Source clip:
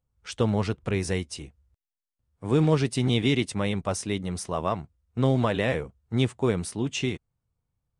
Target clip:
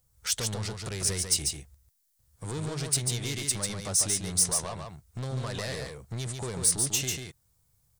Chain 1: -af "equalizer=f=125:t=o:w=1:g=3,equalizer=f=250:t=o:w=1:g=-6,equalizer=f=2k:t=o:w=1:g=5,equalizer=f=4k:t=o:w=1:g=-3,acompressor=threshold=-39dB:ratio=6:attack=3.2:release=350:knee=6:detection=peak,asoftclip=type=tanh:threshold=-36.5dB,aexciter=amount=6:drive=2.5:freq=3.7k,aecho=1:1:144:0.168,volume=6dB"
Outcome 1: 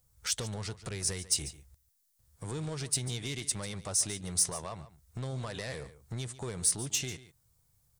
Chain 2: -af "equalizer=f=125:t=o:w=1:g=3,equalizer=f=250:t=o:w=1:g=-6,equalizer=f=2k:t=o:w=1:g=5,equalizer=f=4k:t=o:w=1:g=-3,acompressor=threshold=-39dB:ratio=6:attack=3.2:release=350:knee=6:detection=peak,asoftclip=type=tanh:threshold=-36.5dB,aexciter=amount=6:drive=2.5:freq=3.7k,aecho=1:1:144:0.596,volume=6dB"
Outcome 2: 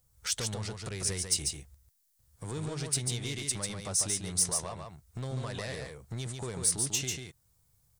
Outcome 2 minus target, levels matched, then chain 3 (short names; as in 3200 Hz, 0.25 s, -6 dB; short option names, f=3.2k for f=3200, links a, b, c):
compressor: peak gain reduction +5 dB
-af "equalizer=f=125:t=o:w=1:g=3,equalizer=f=250:t=o:w=1:g=-6,equalizer=f=2k:t=o:w=1:g=5,equalizer=f=4k:t=o:w=1:g=-3,acompressor=threshold=-33dB:ratio=6:attack=3.2:release=350:knee=6:detection=peak,asoftclip=type=tanh:threshold=-36.5dB,aexciter=amount=6:drive=2.5:freq=3.7k,aecho=1:1:144:0.596,volume=6dB"